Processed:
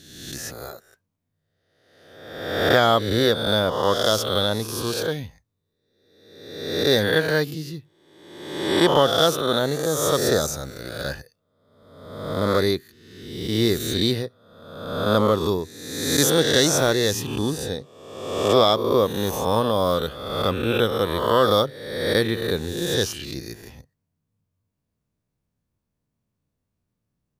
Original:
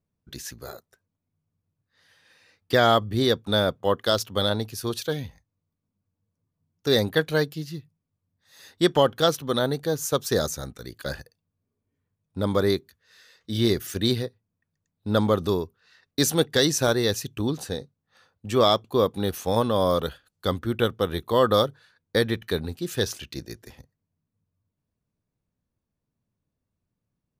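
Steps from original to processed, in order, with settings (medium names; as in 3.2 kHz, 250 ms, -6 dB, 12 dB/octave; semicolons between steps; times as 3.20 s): reverse spectral sustain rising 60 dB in 1.12 s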